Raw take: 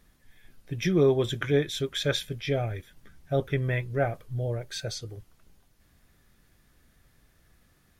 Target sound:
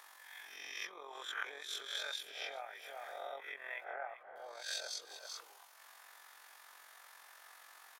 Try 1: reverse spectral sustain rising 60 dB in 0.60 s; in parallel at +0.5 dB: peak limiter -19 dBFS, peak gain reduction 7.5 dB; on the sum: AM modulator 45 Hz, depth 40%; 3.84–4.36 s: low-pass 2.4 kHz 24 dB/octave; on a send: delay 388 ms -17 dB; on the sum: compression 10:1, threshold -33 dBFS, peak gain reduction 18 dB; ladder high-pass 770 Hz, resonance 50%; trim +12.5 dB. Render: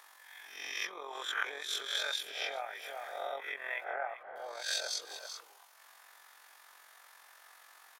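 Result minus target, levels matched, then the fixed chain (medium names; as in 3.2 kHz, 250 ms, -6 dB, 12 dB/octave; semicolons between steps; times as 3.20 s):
compression: peak gain reduction -6.5 dB
reverse spectral sustain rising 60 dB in 0.60 s; in parallel at +0.5 dB: peak limiter -19 dBFS, peak gain reduction 7.5 dB; on the sum: AM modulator 45 Hz, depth 40%; 3.84–4.36 s: low-pass 2.4 kHz 24 dB/octave; on a send: delay 388 ms -17 dB; on the sum: compression 10:1, threshold -40 dBFS, peak gain reduction 24.5 dB; ladder high-pass 770 Hz, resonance 50%; trim +12.5 dB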